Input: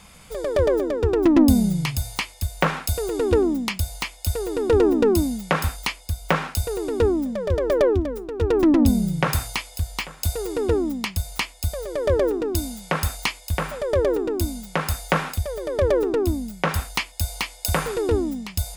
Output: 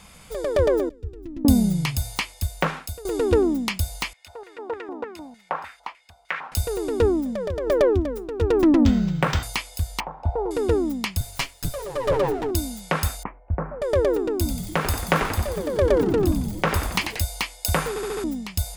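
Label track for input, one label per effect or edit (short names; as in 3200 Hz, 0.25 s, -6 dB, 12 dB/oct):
0.890000	1.450000	passive tone stack bass-middle-treble 10-0-1
2.450000	3.050000	fade out, to -16.5 dB
4.130000	6.520000	LFO band-pass square 3.3 Hz 890–2000 Hz
7.200000	7.670000	compressor, threshold -23 dBFS
8.780000	9.430000	decimation joined by straight lines rate divided by 4×
10.000000	10.510000	synth low-pass 860 Hz, resonance Q 5.3
11.200000	12.510000	minimum comb delay 7.2 ms
13.230000	13.820000	Gaussian blur sigma 6.8 samples
14.360000	17.240000	frequency-shifting echo 91 ms, feedback 62%, per repeat -130 Hz, level -7 dB
17.890000	17.890000	stutter in place 0.07 s, 5 plays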